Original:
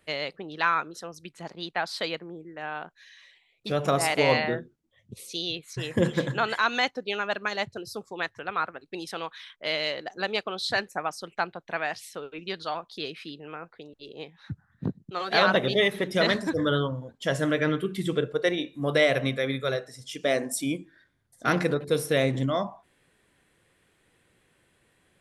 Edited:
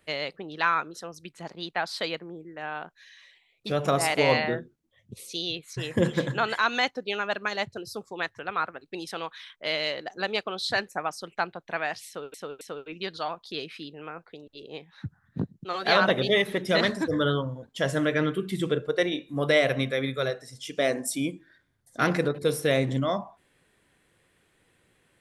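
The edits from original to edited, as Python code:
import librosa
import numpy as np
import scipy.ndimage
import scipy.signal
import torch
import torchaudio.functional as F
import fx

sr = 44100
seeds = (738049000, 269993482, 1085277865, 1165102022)

y = fx.edit(x, sr, fx.repeat(start_s=12.07, length_s=0.27, count=3), tone=tone)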